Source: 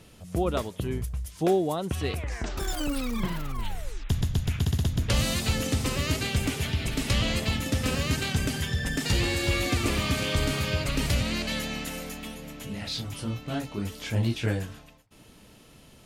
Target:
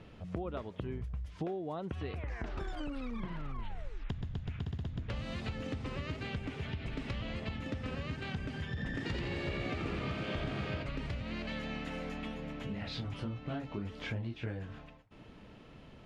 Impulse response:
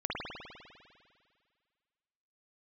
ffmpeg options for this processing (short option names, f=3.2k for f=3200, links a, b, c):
-filter_complex "[0:a]lowpass=2.5k,acompressor=threshold=-35dB:ratio=10,asettb=1/sr,asplit=3[a][b][c];[a]atrim=end=8.684[d];[b]atrim=start=8.68:end=10.83,asetpts=PTS-STARTPTS,afade=t=in:d=0.004:c=qsin,afade=t=out:st=2.146:d=0.004:c=qsin,asplit=8[e][f][g][h][i][j][k][l];[f]adelay=86,afreqshift=62,volume=-4.5dB[m];[g]adelay=172,afreqshift=124,volume=-10dB[n];[h]adelay=258,afreqshift=186,volume=-15.5dB[o];[i]adelay=344,afreqshift=248,volume=-21dB[p];[j]adelay=430,afreqshift=310,volume=-26.6dB[q];[k]adelay=516,afreqshift=372,volume=-32.1dB[r];[l]adelay=602,afreqshift=434,volume=-37.6dB[s];[e][m][n][o][p][q][r][s]amix=inputs=8:normalize=0,atrim=end_sample=94815[t];[c]atrim=start=10.826[u];[d][t]acrossfade=d=0.004:c1=hsin:c2=qsin[v];[v][u]acrossfade=d=0.004:c1=qsin:c2=hsin"